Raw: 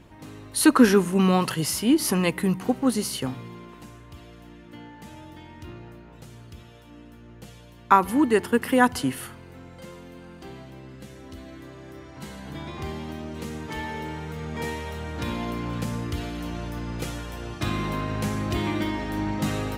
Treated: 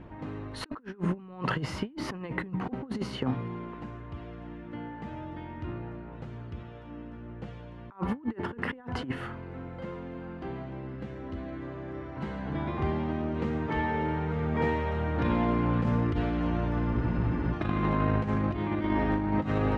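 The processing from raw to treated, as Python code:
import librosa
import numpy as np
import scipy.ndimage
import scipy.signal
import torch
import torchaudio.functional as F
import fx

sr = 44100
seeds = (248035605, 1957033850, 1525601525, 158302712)

y = scipy.signal.sosfilt(scipy.signal.butter(2, 1800.0, 'lowpass', fs=sr, output='sos'), x)
y = fx.over_compress(y, sr, threshold_db=-29.0, ratio=-0.5)
y = fx.spec_freeze(y, sr, seeds[0], at_s=16.95, hold_s=0.58)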